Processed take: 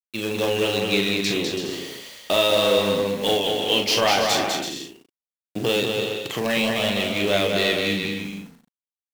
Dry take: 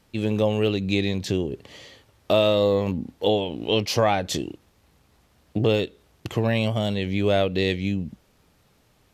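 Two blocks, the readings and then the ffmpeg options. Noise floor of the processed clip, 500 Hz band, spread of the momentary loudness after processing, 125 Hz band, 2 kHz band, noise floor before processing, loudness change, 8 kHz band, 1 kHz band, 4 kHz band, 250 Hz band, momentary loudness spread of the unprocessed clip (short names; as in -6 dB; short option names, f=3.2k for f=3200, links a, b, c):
under -85 dBFS, +1.0 dB, 13 LU, -7.0 dB, +7.5 dB, -62 dBFS, +2.0 dB, +8.5 dB, +3.5 dB, +8.0 dB, -1.0 dB, 10 LU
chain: -filter_complex "[0:a]highpass=160,tiltshelf=f=970:g=-5.5,asplit=2[a][b];[b]aeval=exprs='(mod(8.91*val(0)+1,2)-1)/8.91':c=same,volume=-10dB[c];[a][c]amix=inputs=2:normalize=0,acrusher=bits=6:mix=0:aa=0.000001,asplit=2[d][e];[e]adelay=40,volume=-5.5dB[f];[d][f]amix=inputs=2:normalize=0,aecho=1:1:200|330|414.5|469.4|505.1:0.631|0.398|0.251|0.158|0.1,adynamicequalizer=threshold=0.0178:dfrequency=5700:dqfactor=0.7:tfrequency=5700:tqfactor=0.7:attack=5:release=100:ratio=0.375:range=2.5:mode=cutabove:tftype=highshelf"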